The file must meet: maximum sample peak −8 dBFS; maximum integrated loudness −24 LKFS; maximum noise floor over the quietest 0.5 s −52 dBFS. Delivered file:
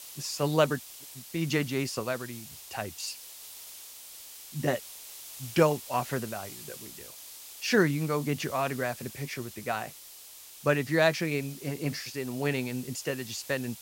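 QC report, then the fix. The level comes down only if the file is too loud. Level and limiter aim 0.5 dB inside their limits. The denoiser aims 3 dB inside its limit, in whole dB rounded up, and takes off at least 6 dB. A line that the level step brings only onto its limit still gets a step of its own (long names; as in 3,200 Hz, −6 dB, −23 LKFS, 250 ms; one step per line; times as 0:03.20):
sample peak −8.5 dBFS: in spec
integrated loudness −30.5 LKFS: in spec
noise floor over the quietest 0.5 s −49 dBFS: out of spec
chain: broadband denoise 6 dB, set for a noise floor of −49 dBFS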